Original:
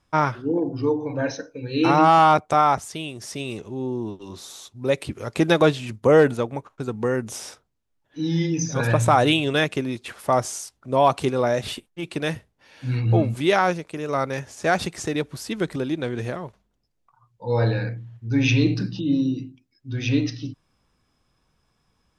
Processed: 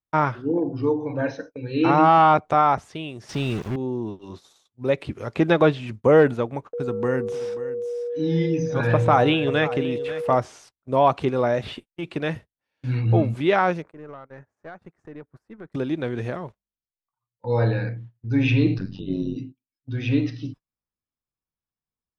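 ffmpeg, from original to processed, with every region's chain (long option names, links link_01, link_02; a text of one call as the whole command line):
ffmpeg -i in.wav -filter_complex "[0:a]asettb=1/sr,asplit=3[link_01][link_02][link_03];[link_01]atrim=end=3.294[link_04];[link_02]atrim=start=3.29:end=3.76,asetpts=PTS-STARTPTS,afade=type=in:duration=0.004:curve=qsin,afade=type=out:start_time=0.466:duration=0.004:curve=qsin,aeval=exprs='val(0)+0.5*0.0119*sgn(val(0))':channel_layout=same,bass=frequency=250:gain=9,treble=frequency=4000:gain=15,acrusher=bits=4:mix=0:aa=0.5[link_05];[link_03]atrim=start=3.756[link_06];[link_04][link_05]acrossfade=duration=0.004:curve1=hsin:curve2=qsin[link_07];[link_07][link_06]acrossfade=duration=0.004:curve1=qsin:curve2=hsin,asettb=1/sr,asplit=3[link_08][link_09][link_10];[link_08]atrim=end=6.734[link_11];[link_09]atrim=start=6.73:end=10.35,asetpts=PTS-STARTPTS,afade=type=in:duration=0.004:curve=qsin,afade=type=out:start_time=3.616:duration=0.004:curve=qsin,bandreject=frequency=191.2:width_type=h:width=4,bandreject=frequency=382.4:width_type=h:width=4,bandreject=frequency=573.6:width_type=h:width=4,bandreject=frequency=764.8:width_type=h:width=4,bandreject=frequency=956:width_type=h:width=4,bandreject=frequency=1147.2:width_type=h:width=4,bandreject=frequency=1338.4:width_type=h:width=4,aeval=exprs='val(0)+0.0501*sin(2*PI*480*n/s)':channel_layout=same,aecho=1:1:535:0.178,atrim=end_sample=159642[link_12];[link_10]atrim=start=10.346[link_13];[link_11][link_12]acrossfade=duration=0.004:curve1=hsin:curve2=qsin[link_14];[link_14][link_13]acrossfade=duration=0.004:curve1=qsin:curve2=hsin,asettb=1/sr,asplit=3[link_15][link_16][link_17];[link_15]atrim=end=13.824[link_18];[link_16]atrim=start=13.82:end=15.72,asetpts=PTS-STARTPTS,afade=type=in:duration=0.004:curve=qsin,afade=type=out:start_time=1.896:duration=0.004:curve=qsin,highshelf=frequency=2300:width_type=q:width=1.5:gain=-13.5,acompressor=threshold=-33dB:ratio=10:attack=3.2:release=140:knee=1:detection=peak,aeval=exprs='(tanh(31.6*val(0)+0.35)-tanh(0.35))/31.6':channel_layout=same[link_19];[link_17]atrim=start=15.716[link_20];[link_18][link_19]acrossfade=duration=0.004:curve1=hsin:curve2=qsin[link_21];[link_21][link_20]acrossfade=duration=0.004:curve1=qsin:curve2=hsin,asettb=1/sr,asplit=3[link_22][link_23][link_24];[link_22]atrim=end=18.784[link_25];[link_23]atrim=start=18.78:end=19.36,asetpts=PTS-STARTPTS,afade=type=in:duration=0.004:curve=qsin,afade=type=out:start_time=0.576:duration=0.004:curve=qsin,bandreject=frequency=310:width=7.1,tremolo=f=95:d=0.974[link_26];[link_24]atrim=start=19.356[link_27];[link_25][link_26]acrossfade=duration=0.004:curve1=hsin:curve2=qsin[link_28];[link_28][link_27]acrossfade=duration=0.004:curve1=qsin:curve2=hsin,agate=range=-28dB:threshold=-38dB:ratio=16:detection=peak,highshelf=frequency=5700:gain=-9.5,acrossover=split=4000[link_29][link_30];[link_30]acompressor=threshold=-54dB:ratio=4:attack=1:release=60[link_31];[link_29][link_31]amix=inputs=2:normalize=0" out.wav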